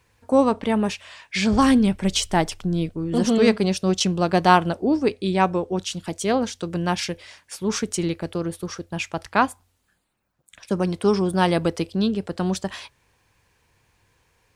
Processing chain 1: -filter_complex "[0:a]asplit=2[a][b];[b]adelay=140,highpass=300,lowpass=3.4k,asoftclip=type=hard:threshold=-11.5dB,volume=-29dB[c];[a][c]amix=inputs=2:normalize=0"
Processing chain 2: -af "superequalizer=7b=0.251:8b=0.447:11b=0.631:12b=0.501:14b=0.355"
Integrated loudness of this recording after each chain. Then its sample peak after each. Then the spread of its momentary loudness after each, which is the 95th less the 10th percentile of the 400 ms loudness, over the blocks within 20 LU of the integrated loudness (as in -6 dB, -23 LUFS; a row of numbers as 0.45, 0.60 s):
-22.5, -23.5 LUFS; -1.5, -3.5 dBFS; 11, 12 LU